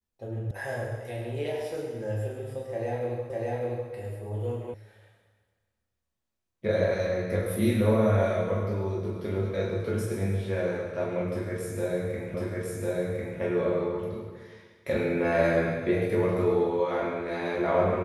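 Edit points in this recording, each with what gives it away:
0.51 sound cut off
3.3 repeat of the last 0.6 s
4.74 sound cut off
12.34 repeat of the last 1.05 s

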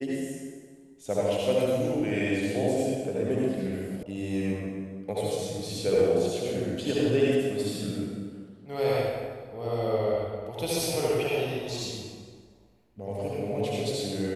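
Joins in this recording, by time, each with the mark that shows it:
4.03 sound cut off

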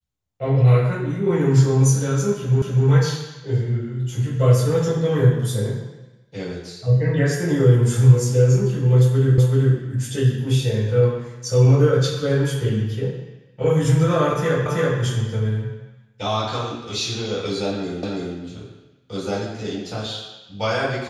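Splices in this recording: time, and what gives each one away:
2.62 repeat of the last 0.25 s
9.38 repeat of the last 0.38 s
14.66 repeat of the last 0.33 s
18.03 repeat of the last 0.33 s

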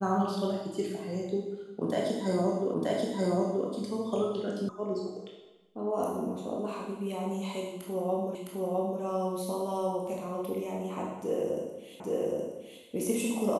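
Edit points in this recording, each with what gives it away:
2.74 repeat of the last 0.93 s
4.69 sound cut off
8.35 repeat of the last 0.66 s
12 repeat of the last 0.82 s

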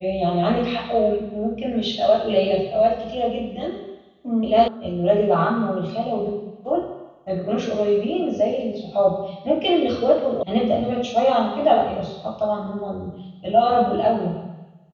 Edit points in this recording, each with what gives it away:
4.68 sound cut off
10.43 sound cut off

